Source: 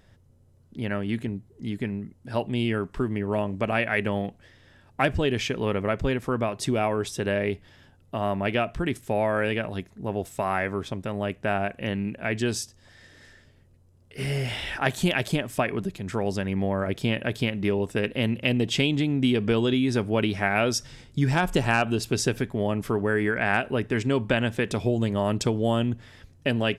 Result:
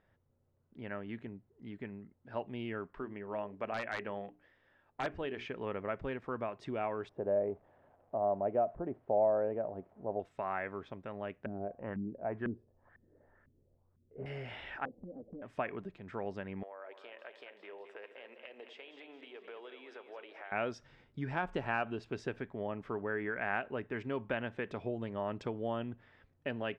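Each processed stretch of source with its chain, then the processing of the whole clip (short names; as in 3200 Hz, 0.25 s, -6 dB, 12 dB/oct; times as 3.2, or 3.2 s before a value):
2.94–5.46 bell 94 Hz -5.5 dB 2 oct + notches 60/120/180/240/300/360/420 Hz + wrapped overs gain 13.5 dB
7.09–10.2 switching spikes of -27 dBFS + synth low-pass 660 Hz, resonance Q 2.6
11.46–14.26 LFO low-pass saw up 2 Hz 220–1600 Hz + low shelf 75 Hz +9 dB
14.85–15.42 steep low-pass 530 Hz + comb 3.9 ms, depth 89% + compressor, threshold -29 dBFS
16.63–20.52 HPF 450 Hz 24 dB/oct + compressor 3:1, threshold -36 dBFS + split-band echo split 520 Hz, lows 85 ms, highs 0.214 s, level -9 dB
whole clip: LPF 1900 Hz 12 dB/oct; low shelf 280 Hz -11 dB; gain -8.5 dB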